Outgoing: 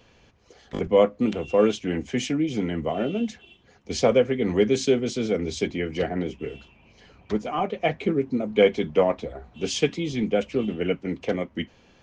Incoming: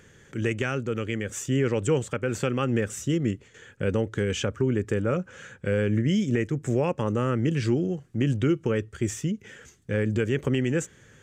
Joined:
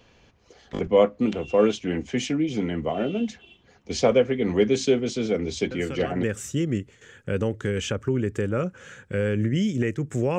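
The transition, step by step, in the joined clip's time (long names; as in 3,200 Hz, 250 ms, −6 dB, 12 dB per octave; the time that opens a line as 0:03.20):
outgoing
0:05.71: mix in incoming from 0:02.24 0.52 s −9.5 dB
0:06.23: continue with incoming from 0:02.76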